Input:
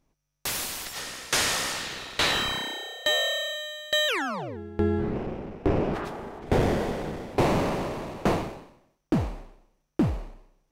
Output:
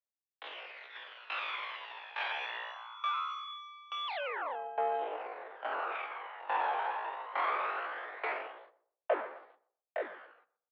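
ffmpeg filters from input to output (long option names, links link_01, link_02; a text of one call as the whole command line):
ffmpeg -i in.wav -filter_complex "[0:a]agate=range=-31dB:threshold=-50dB:ratio=16:detection=peak,aresample=8000,asoftclip=type=tanh:threshold=-21.5dB,aresample=44100,aphaser=in_gain=1:out_gain=1:delay=2.4:decay=0.5:speed=0.22:type=triangular,asetrate=80880,aresample=44100,atempo=0.545254,asplit=2[link_01][link_02];[link_02]adelay=124,lowpass=frequency=970:poles=1,volume=-16dB,asplit=2[link_03][link_04];[link_04]adelay=124,lowpass=frequency=970:poles=1,volume=0.31,asplit=2[link_05][link_06];[link_06]adelay=124,lowpass=frequency=970:poles=1,volume=0.31[link_07];[link_03][link_05][link_07]amix=inputs=3:normalize=0[link_08];[link_01][link_08]amix=inputs=2:normalize=0,highpass=frequency=430:width_type=q:width=0.5412,highpass=frequency=430:width_type=q:width=1.307,lowpass=frequency=2900:width_type=q:width=0.5176,lowpass=frequency=2900:width_type=q:width=0.7071,lowpass=frequency=2900:width_type=q:width=1.932,afreqshift=70,volume=-5dB" out.wav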